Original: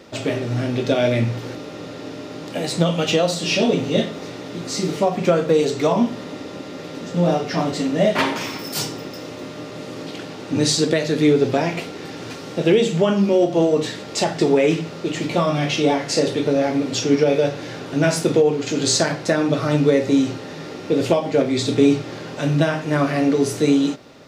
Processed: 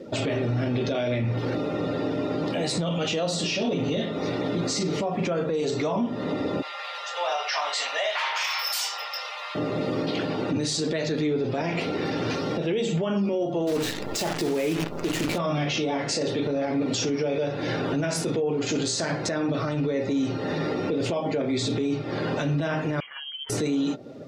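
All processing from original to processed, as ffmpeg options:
-filter_complex "[0:a]asettb=1/sr,asplit=3[a][b][c];[a]atrim=end=6.624[d];[b]atrim=start=6.62:end=9.55,asetpts=PTS-STARTPTS,afade=t=in:d=0.004:c=qsin,afade=t=out:st=2.926:d=0.004:c=qsin,highpass=f=790:w=0.5412,highpass=f=790:w=1.3066,equalizer=f=2.8k:w=1.6:g=2.5,asplit=2[e][f];[f]adelay=24,volume=-11dB[g];[e][g]amix=inputs=2:normalize=0,atrim=end_sample=129213[h];[c]atrim=start=9.546[i];[d][h]acrossfade=d=0.004:c1=hsin:c2=qsin[j];[j][i]acrossfade=d=0.004:c1=qsin:c2=hsin,asettb=1/sr,asplit=3[k][l][m];[k]atrim=end=13.674[n];[l]atrim=start=13.67:end=15.38,asetpts=PTS-STARTPTS,afade=t=in:d=0.004:c=qsin,afade=t=out:st=1.706:d=0.004:c=qsin,equalizer=f=330:w=4.9:g=3.5,acrusher=bits=5:dc=4:mix=0:aa=0.000001[o];[m]atrim=start=15.376[p];[n][o]acrossfade=d=0.004:c1=hsin:c2=qsin[q];[q][p]acrossfade=d=0.004:c1=qsin:c2=hsin,asettb=1/sr,asplit=3[r][s][t];[r]atrim=end=23.004[u];[s]atrim=start=23:end=23.5,asetpts=PTS-STARTPTS,afade=t=in:d=0.004:c=qsin,afade=t=out:st=0.496:d=0.004:c=qsin,aderivative,adynamicsmooth=sensitivity=7:basefreq=940,lowpass=f=3k:t=q:w=0.5098,lowpass=f=3k:t=q:w=0.6013,lowpass=f=3k:t=q:w=0.9,lowpass=f=3k:t=q:w=2.563,afreqshift=-3500[v];[t]atrim=start=23.496[w];[u][v]acrossfade=d=0.004:c1=hsin:c2=qsin[x];[x][w]acrossfade=d=0.004:c1=qsin:c2=hsin,afftdn=nr=17:nf=-41,acompressor=threshold=-28dB:ratio=4,alimiter=level_in=1.5dB:limit=-24dB:level=0:latency=1:release=15,volume=-1.5dB,volume=7dB"

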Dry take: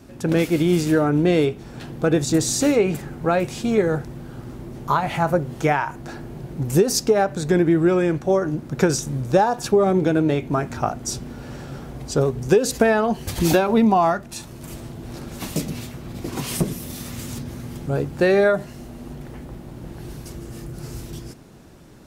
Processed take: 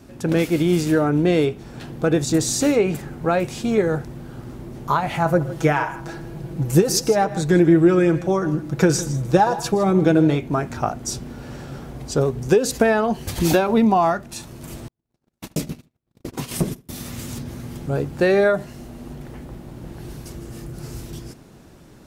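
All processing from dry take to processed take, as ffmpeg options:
-filter_complex "[0:a]asettb=1/sr,asplit=3[a][b][c];[a]atrim=end=5.254[d];[b]atrim=start=5.25:end=10.38,asetpts=PTS-STARTPTS,afade=t=in:d=0.004:c=qsin,afade=t=out:st=5.126:d=0.004:c=qsin,aecho=1:1:6.1:0.52,atrim=end_sample=226233,aecho=1:1:121|157:0.1|0.158,atrim=end_sample=226233[e];[c]atrim=start=10.376[f];[d][e]acrossfade=d=0.004:c1=hsin:c2=qsin[g];[g][f]acrossfade=d=0.004:c1=qsin:c2=hsin,asettb=1/sr,asplit=3[h][i][j];[h]atrim=end=14.884[k];[i]atrim=start=14.88:end=16.89,asetpts=PTS-STARTPTS,afade=t=in:d=0.004:c=qsin,afade=t=out:st=2.006:d=0.004:c=qsin,agate=range=-50dB:threshold=-29dB:ratio=16:release=100:detection=peak,asplit=2[l][m];[m]adelay=74,lowpass=f=2.5k:p=1,volume=-19.5dB,asplit=2[n][o];[o]adelay=74,lowpass=f=2.5k:p=1,volume=0.28[p];[l][n][p]amix=inputs=3:normalize=0,atrim=end_sample=88641[q];[j]atrim=start=16.886[r];[k][q]acrossfade=d=0.004:c1=hsin:c2=qsin[s];[s][r]acrossfade=d=0.004:c1=qsin:c2=hsin"

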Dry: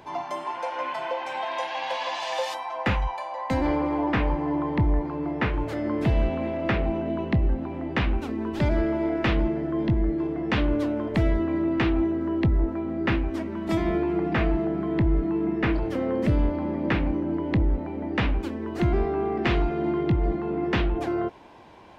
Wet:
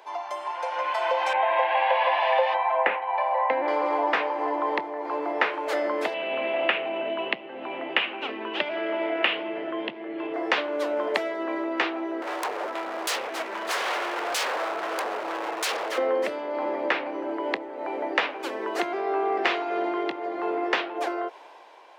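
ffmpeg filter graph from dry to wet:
-filter_complex "[0:a]asettb=1/sr,asplit=3[a][b][c];[a]atrim=end=1.334[d];[b]atrim=start=1.33:end=3.68,asetpts=PTS-STARTPTS,afade=t=in:d=0.004:c=qsin,afade=t=out:st=2.346:d=0.004:c=qsin,lowpass=f=2.5k:w=0.5412,lowpass=f=2.5k:w=1.3066,equalizer=f=1.3k:w=2.6:g=-6[e];[c]atrim=start=3.676[f];[d][e]acrossfade=d=0.004:c1=hsin:c2=qsin[g];[g][f]acrossfade=d=0.004:c1=qsin:c2=hsin,asettb=1/sr,asplit=3[h][i][j];[h]atrim=end=6.144[k];[i]atrim=start=6.14:end=10.34,asetpts=PTS-STARTPTS,afade=t=in:d=0.004:c=qsin,afade=t=out:st=4.196:d=0.004:c=qsin,equalizer=f=160:t=o:w=1.1:g=11.5,flanger=delay=5.9:depth=8.9:regen=-82:speed=1.5:shape=sinusoidal,lowpass=f=2.9k:t=q:w=4.4[l];[j]atrim=start=10.336[m];[k][l]acrossfade=d=0.004:c1=hsin:c2=qsin[n];[n][m]acrossfade=d=0.004:c1=qsin:c2=hsin,asettb=1/sr,asplit=3[o][p][q];[o]atrim=end=12.224[r];[p]atrim=start=12.22:end=15.98,asetpts=PTS-STARTPTS,afade=t=in:d=0.004:c=qsin,afade=t=out:st=3.756:d=0.004:c=qsin,equalizer=f=330:w=0.94:g=-8,acompressor=mode=upward:threshold=-30dB:ratio=2.5:attack=3.2:release=140:knee=2.83:detection=peak,aeval=exprs='0.0266*(abs(mod(val(0)/0.0266+3,4)-2)-1)':c=same[s];[q]atrim=start=15.976[t];[r][s]acrossfade=d=0.004:c1=hsin:c2=qsin[u];[u][t]acrossfade=d=0.004:c1=qsin:c2=hsin,acompressor=threshold=-27dB:ratio=6,highpass=f=460:w=0.5412,highpass=f=460:w=1.3066,dynaudnorm=f=190:g=11:m=10.5dB"

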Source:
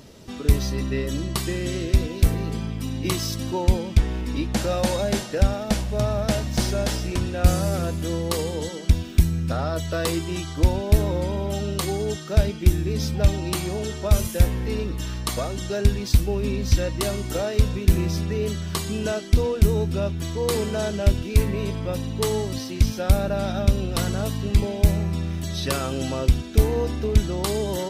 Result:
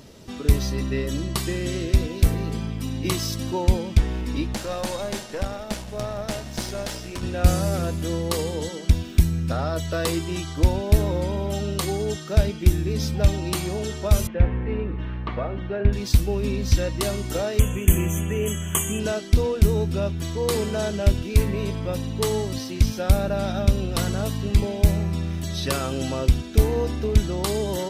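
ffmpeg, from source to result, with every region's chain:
-filter_complex "[0:a]asettb=1/sr,asplit=3[a][b][c];[a]atrim=end=4.544[d];[b]atrim=start=4.54:end=7.23,asetpts=PTS-STARTPTS,afade=t=in:d=0.004:c=qsin,afade=t=out:st=2.686:d=0.004:c=qsin,lowshelf=f=220:g=-7.5,aeval=exprs='(tanh(6.31*val(0)+0.7)-tanh(0.7))/6.31':c=same,aecho=1:1:172:0.133,atrim=end_sample=118629[e];[c]atrim=start=7.226[f];[d][e]acrossfade=d=0.004:c1=hsin:c2=qsin[g];[g][f]acrossfade=d=0.004:c1=qsin:c2=hsin,asettb=1/sr,asplit=3[h][i][j];[h]atrim=end=14.274[k];[i]atrim=start=14.27:end=15.93,asetpts=PTS-STARTPTS,afade=t=in:d=0.004:c=qsin,afade=t=out:st=1.656:d=0.004:c=qsin,lowpass=f=2.4k:w=0.5412,lowpass=f=2.4k:w=1.3066,bandreject=f=68.98:t=h:w=4,bandreject=f=137.96:t=h:w=4,bandreject=f=206.94:t=h:w=4,bandreject=f=275.92:t=h:w=4,bandreject=f=344.9:t=h:w=4,bandreject=f=413.88:t=h:w=4,bandreject=f=482.86:t=h:w=4,bandreject=f=551.84:t=h:w=4,bandreject=f=620.82:t=h:w=4,bandreject=f=689.8:t=h:w=4,bandreject=f=758.78:t=h:w=4,bandreject=f=827.76:t=h:w=4,bandreject=f=896.74:t=h:w=4,bandreject=f=965.72:t=h:w=4,bandreject=f=1.0347k:t=h:w=4,bandreject=f=1.10368k:t=h:w=4,bandreject=f=1.17266k:t=h:w=4,bandreject=f=1.24164k:t=h:w=4,bandreject=f=1.31062k:t=h:w=4,bandreject=f=1.3796k:t=h:w=4,bandreject=f=1.44858k:t=h:w=4,bandreject=f=1.51756k:t=h:w=4,bandreject=f=1.58654k:t=h:w=4,bandreject=f=1.65552k:t=h:w=4,bandreject=f=1.7245k:t=h:w=4,bandreject=f=1.79348k:t=h:w=4,bandreject=f=1.86246k:t=h:w=4,bandreject=f=1.93144k:t=h:w=4[l];[j]atrim=start=15.926[m];[k][l]acrossfade=d=0.004:c1=hsin:c2=qsin[n];[n][m]acrossfade=d=0.004:c1=qsin:c2=hsin,asettb=1/sr,asplit=3[o][p][q];[o]atrim=end=17.594[r];[p]atrim=start=17.59:end=19,asetpts=PTS-STARTPTS,afade=t=in:d=0.004:c=qsin,afade=t=out:st=1.406:d=0.004:c=qsin,asuperstop=centerf=4600:order=20:qfactor=1.7,highshelf=f=3.6k:g=11.5[s];[q]atrim=start=18.996[t];[r][s]acrossfade=d=0.004:c1=hsin:c2=qsin[u];[u][t]acrossfade=d=0.004:c1=qsin:c2=hsin"

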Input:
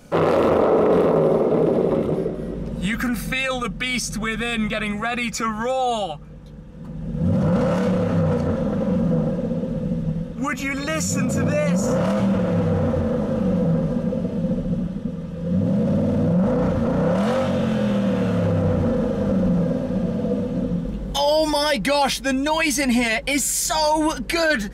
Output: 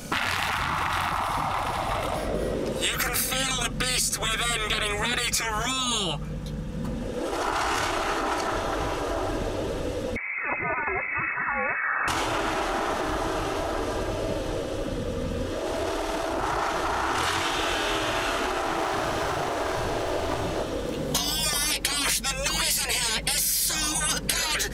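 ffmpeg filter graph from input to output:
-filter_complex "[0:a]asettb=1/sr,asplit=3[a][b][c];[a]atrim=end=10.164[d];[b]atrim=start=10.16:end=12.08,asetpts=PTS-STARTPTS,afade=t=in:d=0.004:c=qsin,afade=t=out:st=1.916:d=0.004:c=qsin,lowshelf=f=320:g=11,lowpass=f=2.2k:t=q:w=0.5098,lowpass=f=2.2k:t=q:w=0.6013,lowpass=f=2.2k:t=q:w=0.9,lowpass=f=2.2k:t=q:w=2.563,afreqshift=-2600[e];[c]atrim=start=12.076[f];[d][e]acrossfade=d=0.004:c1=hsin:c2=qsin[g];[g][f]acrossfade=d=0.004:c1=qsin:c2=hsin,asettb=1/sr,asplit=3[h][i][j];[h]atrim=end=18.754[k];[i]atrim=start=18.75:end=20.63,asetpts=PTS-STARTPTS,afade=t=in:d=0.004:c=qsin,afade=t=out:st=1.876:d=0.004:c=qsin,aeval=exprs='clip(val(0),-1,0.0841)':c=same,asplit=2[l][m];[m]adelay=35,volume=-5dB[n];[l][n]amix=inputs=2:normalize=0,atrim=end_sample=82908[o];[j]atrim=start=20.626[p];[k][o]acrossfade=d=0.004:c1=hsin:c2=qsin[q];[q][p]acrossfade=d=0.004:c1=qsin:c2=hsin,highshelf=f=2.5k:g=8,afftfilt=real='re*lt(hypot(re,im),0.2)':imag='im*lt(hypot(re,im),0.2)':win_size=1024:overlap=0.75,acompressor=threshold=-29dB:ratio=6,volume=7dB"

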